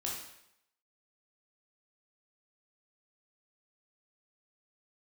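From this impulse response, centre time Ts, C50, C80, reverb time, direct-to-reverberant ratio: 49 ms, 2.5 dB, 6.0 dB, 0.80 s, -3.5 dB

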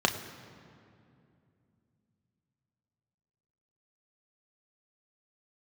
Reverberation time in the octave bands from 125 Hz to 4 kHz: 4.1, 3.8, 2.8, 2.3, 2.1, 1.6 s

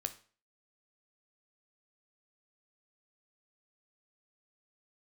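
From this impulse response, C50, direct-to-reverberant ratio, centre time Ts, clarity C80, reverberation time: 14.5 dB, 8.5 dB, 5 ms, 19.5 dB, 0.40 s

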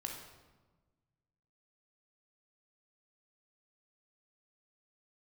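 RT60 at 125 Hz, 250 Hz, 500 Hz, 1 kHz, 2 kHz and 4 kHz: 2.1, 1.7, 1.4, 1.2, 0.95, 0.85 s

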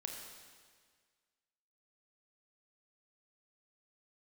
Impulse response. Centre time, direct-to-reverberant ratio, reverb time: 63 ms, 1.0 dB, 1.7 s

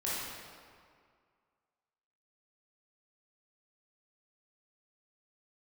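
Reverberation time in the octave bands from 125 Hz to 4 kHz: 1.9, 2.0, 2.0, 2.1, 1.8, 1.4 s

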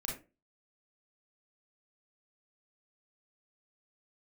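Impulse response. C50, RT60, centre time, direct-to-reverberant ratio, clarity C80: 4.5 dB, 0.30 s, 32 ms, -2.0 dB, 12.0 dB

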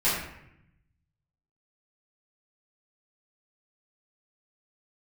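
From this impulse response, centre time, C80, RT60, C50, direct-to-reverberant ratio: 59 ms, 4.5 dB, 0.80 s, 1.5 dB, -12.0 dB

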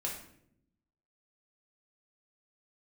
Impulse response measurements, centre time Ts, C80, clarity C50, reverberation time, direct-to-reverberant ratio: 32 ms, 8.5 dB, 5.0 dB, 0.70 s, -2.5 dB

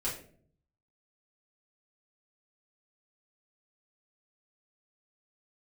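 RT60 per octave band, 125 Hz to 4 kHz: 1.0, 0.80, 0.65, 0.45, 0.40, 0.30 s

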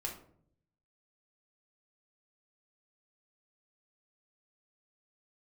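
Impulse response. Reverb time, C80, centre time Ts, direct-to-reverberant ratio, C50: 0.60 s, 12.0 dB, 22 ms, 0.0 dB, 7.5 dB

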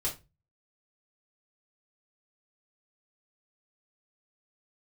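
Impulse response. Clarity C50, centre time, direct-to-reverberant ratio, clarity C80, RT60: 11.5 dB, 18 ms, -6.0 dB, 19.5 dB, 0.25 s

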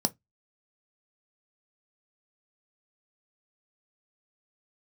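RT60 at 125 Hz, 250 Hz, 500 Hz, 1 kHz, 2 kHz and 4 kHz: 0.25, 0.20, 0.15, 0.15, 0.15, 0.15 s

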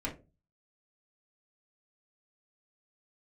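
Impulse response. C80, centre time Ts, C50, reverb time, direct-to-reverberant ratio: 19.0 dB, 17 ms, 11.5 dB, 0.30 s, -4.5 dB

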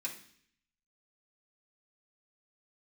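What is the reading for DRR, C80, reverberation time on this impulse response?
-5.5 dB, 13.5 dB, 0.60 s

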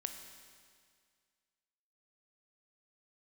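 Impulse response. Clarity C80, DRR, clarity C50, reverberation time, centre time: 8.0 dB, 5.5 dB, 7.0 dB, 2.0 s, 35 ms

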